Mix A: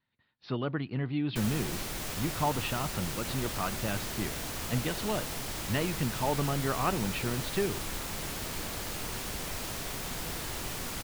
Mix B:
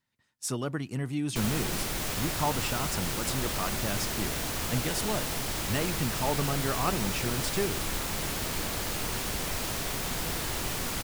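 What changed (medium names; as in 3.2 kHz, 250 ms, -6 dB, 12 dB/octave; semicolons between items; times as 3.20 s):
speech: remove steep low-pass 4.4 kHz 72 dB/octave; background +4.5 dB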